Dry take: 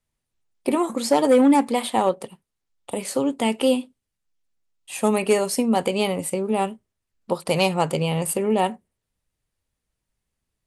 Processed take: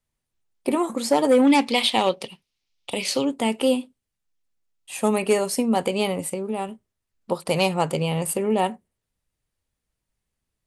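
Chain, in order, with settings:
0:01.47–0:03.25: flat-topped bell 3,600 Hz +12.5 dB
0:06.27–0:06.69: downward compressor 2 to 1, threshold −26 dBFS, peak gain reduction 5.5 dB
level −1 dB

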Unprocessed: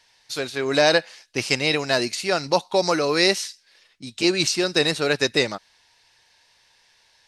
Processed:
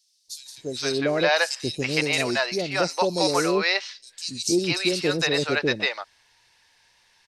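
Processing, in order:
three-band delay without the direct sound highs, lows, mids 280/460 ms, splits 570/4,500 Hz

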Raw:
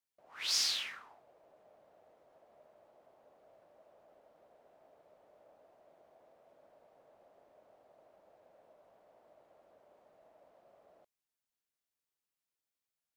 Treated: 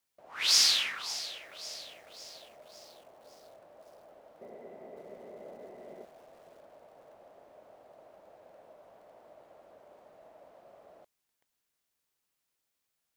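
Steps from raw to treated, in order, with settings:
0:04.41–0:06.05: hollow resonant body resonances 220/380/2,000 Hz, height 17 dB, ringing for 35 ms
feedback echo at a low word length 553 ms, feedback 55%, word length 10 bits, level −14 dB
level +8.5 dB

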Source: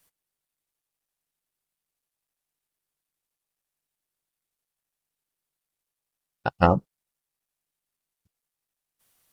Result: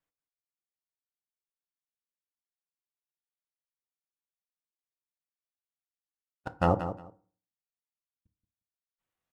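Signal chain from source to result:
running median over 9 samples
noise reduction from a noise print of the clip's start 7 dB
output level in coarse steps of 23 dB
repeating echo 178 ms, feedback 17%, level −10.5 dB
on a send at −10 dB: convolution reverb RT60 0.45 s, pre-delay 3 ms

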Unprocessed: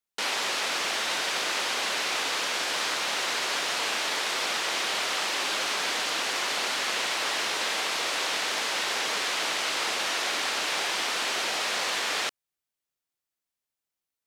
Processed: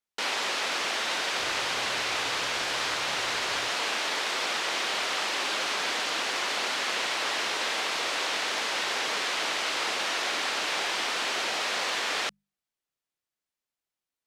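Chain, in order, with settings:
0:01.38–0:03.69: sub-octave generator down 2 octaves, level −5 dB
high-shelf EQ 8,700 Hz −8.5 dB
mains-hum notches 50/100/150/200 Hz

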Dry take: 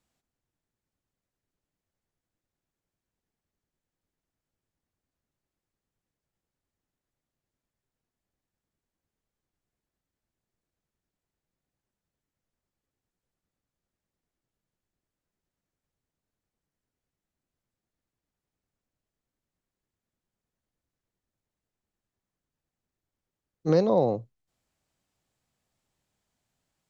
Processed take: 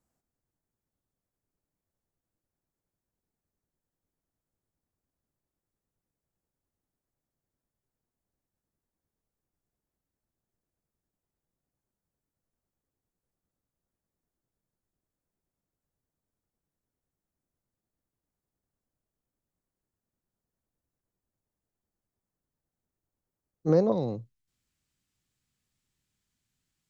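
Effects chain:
parametric band 3,200 Hz −13 dB 1.5 octaves, from 0:23.92 680 Hz

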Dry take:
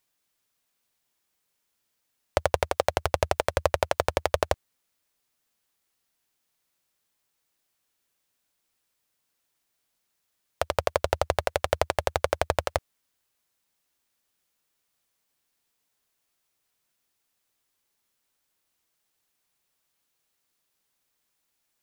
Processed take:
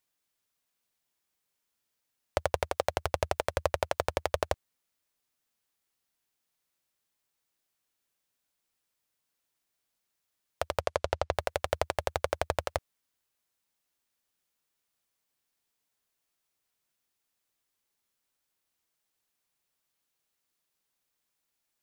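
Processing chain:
0:10.80–0:11.31: low-pass filter 11,000 Hz → 5,400 Hz 12 dB per octave
level −5 dB

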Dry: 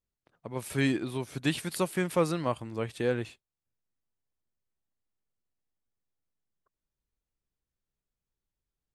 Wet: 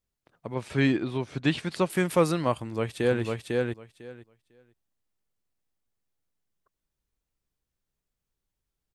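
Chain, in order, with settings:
0:00.54–0:01.90: high-frequency loss of the air 110 metres
0:02.53–0:03.23: delay throw 500 ms, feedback 15%, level −2.5 dB
level +4 dB

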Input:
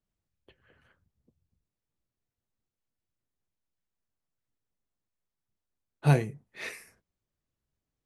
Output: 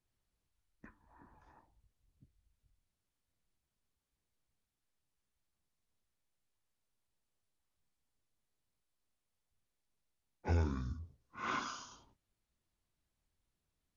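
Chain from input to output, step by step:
wrong playback speed 78 rpm record played at 45 rpm
downward compressor 4 to 1, threshold −34 dBFS, peak gain reduction 15 dB
level +1.5 dB

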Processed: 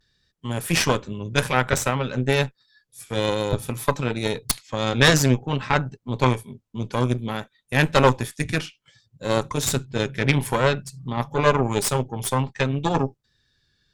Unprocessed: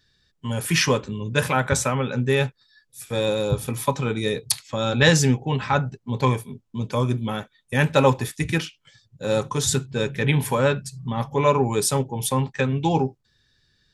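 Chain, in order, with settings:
pitch vibrato 0.56 Hz 41 cents
harmonic generator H 4 −8 dB, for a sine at −3 dBFS
level −2.5 dB

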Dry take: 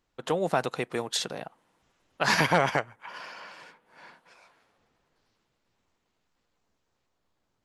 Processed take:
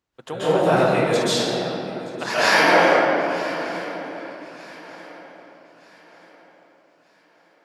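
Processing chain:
high-pass filter 46 Hz 24 dB per octave, from 0:00.99 260 Hz
feedback echo with a long and a short gap by turns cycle 1,232 ms, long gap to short 3 to 1, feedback 37%, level −18.5 dB
convolution reverb RT60 3.0 s, pre-delay 126 ms, DRR −14 dB
level −4.5 dB

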